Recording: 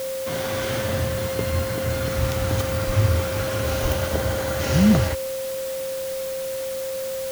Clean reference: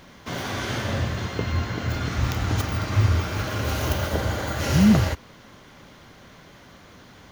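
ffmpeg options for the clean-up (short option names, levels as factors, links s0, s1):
-filter_complex "[0:a]bandreject=f=530:w=30,asplit=3[s0][s1][s2];[s0]afade=t=out:st=2.86:d=0.02[s3];[s1]highpass=f=140:w=0.5412,highpass=f=140:w=1.3066,afade=t=in:st=2.86:d=0.02,afade=t=out:st=2.98:d=0.02[s4];[s2]afade=t=in:st=2.98:d=0.02[s5];[s3][s4][s5]amix=inputs=3:normalize=0,asplit=3[s6][s7][s8];[s6]afade=t=out:st=3.82:d=0.02[s9];[s7]highpass=f=140:w=0.5412,highpass=f=140:w=1.3066,afade=t=in:st=3.82:d=0.02,afade=t=out:st=3.94:d=0.02[s10];[s8]afade=t=in:st=3.94:d=0.02[s11];[s9][s10][s11]amix=inputs=3:normalize=0,afwtdn=0.014"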